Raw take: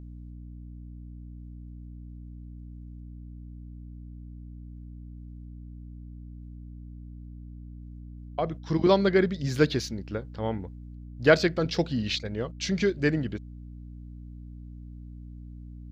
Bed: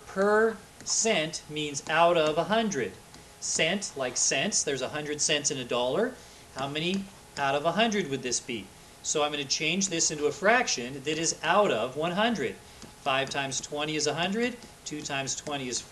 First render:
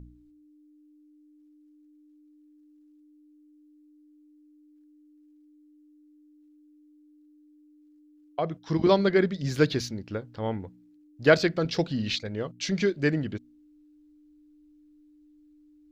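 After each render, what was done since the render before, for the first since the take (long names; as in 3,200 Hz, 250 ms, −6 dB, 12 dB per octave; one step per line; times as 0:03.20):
hum removal 60 Hz, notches 4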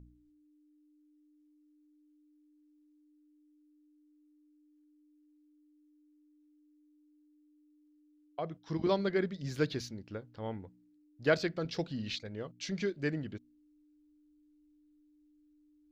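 level −9 dB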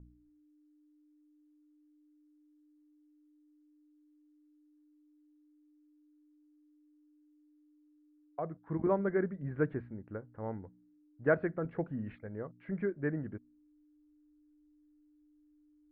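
Butterworth low-pass 1,800 Hz 36 dB per octave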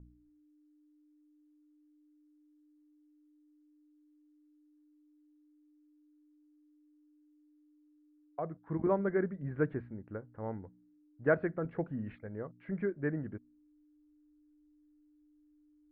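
no processing that can be heard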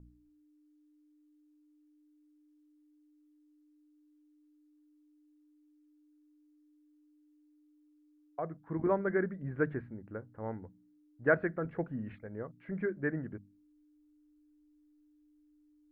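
mains-hum notches 50/100/150/200 Hz
dynamic equaliser 1,700 Hz, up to +5 dB, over −52 dBFS, Q 1.7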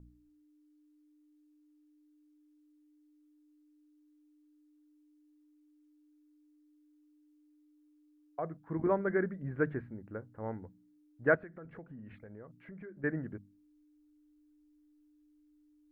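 0:11.35–0:13.04: downward compressor 4 to 1, threshold −47 dBFS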